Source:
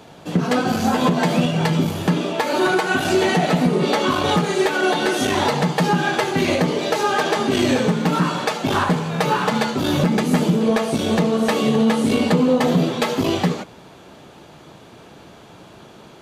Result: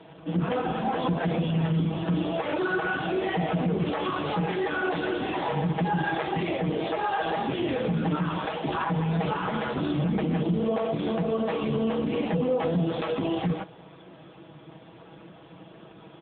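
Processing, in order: comb 6.2 ms, depth 59%; limiter -14 dBFS, peak gain reduction 9.5 dB; dynamic EQ 760 Hz, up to +4 dB, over -43 dBFS, Q 7; gain -3.5 dB; AMR-NB 6.7 kbps 8000 Hz

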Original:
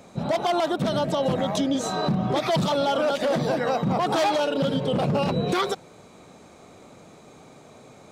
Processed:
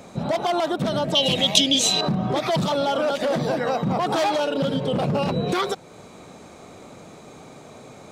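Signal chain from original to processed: 1.15–2.01 resonant high shelf 2000 Hz +12 dB, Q 3; in parallel at 0 dB: compressor, threshold -36 dBFS, peak gain reduction 22.5 dB; on the sum: gain -1 dB

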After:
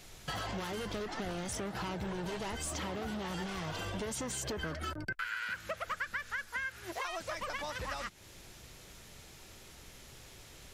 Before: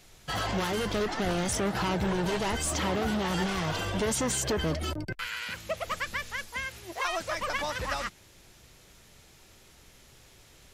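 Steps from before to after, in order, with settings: 4.63–6.92 bell 1500 Hz +13.5 dB 0.62 oct; compressor 4:1, threshold -40 dBFS, peak gain reduction 16 dB; gain +2.5 dB

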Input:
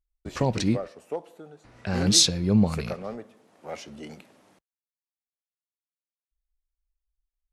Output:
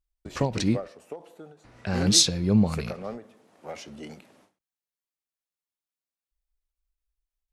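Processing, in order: ending taper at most 190 dB/s

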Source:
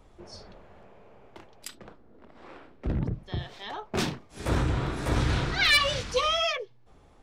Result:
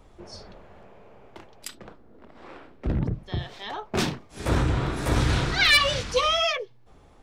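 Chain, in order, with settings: 4.95–5.62 high shelf 11000 Hz -> 5900 Hz +7 dB; gain +3 dB

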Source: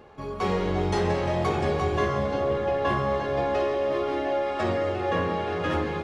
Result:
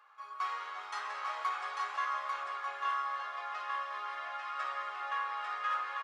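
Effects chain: ladder high-pass 1100 Hz, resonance 65%; echo 0.845 s -4 dB

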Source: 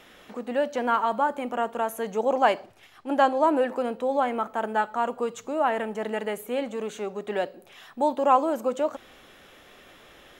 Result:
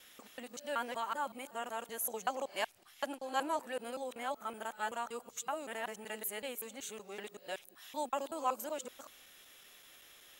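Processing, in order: local time reversal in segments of 0.189 s; pre-emphasis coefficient 0.9; gain +2.5 dB

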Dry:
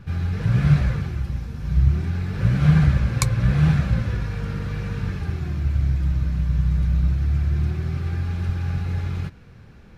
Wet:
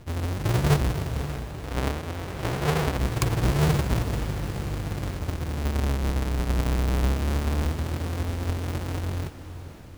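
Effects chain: half-waves squared off; 1.21–2.98 tone controls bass -7 dB, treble -4 dB; on a send: diffused feedback echo 0.552 s, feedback 48%, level -12 dB; on the sum: gain -8.5 dB

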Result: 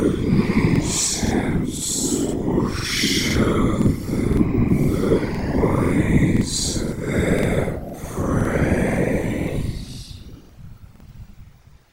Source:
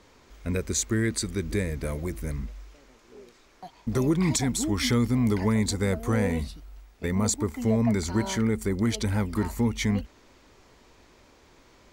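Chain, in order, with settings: Paulstretch 4.2×, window 0.10 s, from 4.12; whisperiser; crackling interface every 0.51 s, samples 2048, repeat, from 0.71; gain +5 dB

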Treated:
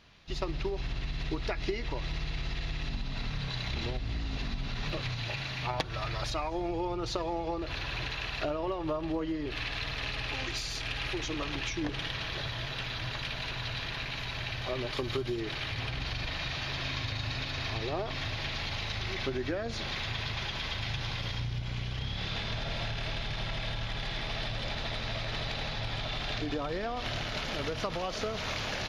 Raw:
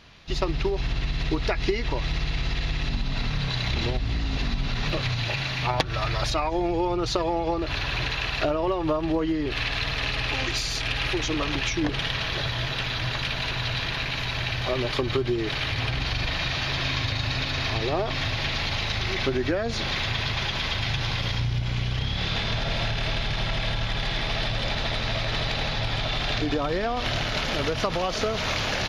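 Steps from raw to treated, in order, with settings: 14.97–15.4 high shelf 6700 Hz +11 dB; on a send: reverb RT60 2.3 s, pre-delay 5 ms, DRR 18 dB; on the sum: gain -8 dB

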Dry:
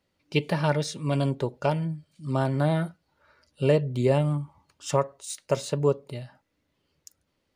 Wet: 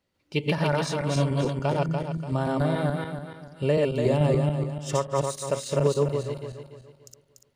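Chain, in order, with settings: regenerating reverse delay 0.145 s, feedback 58%, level 0 dB; gain -2.5 dB

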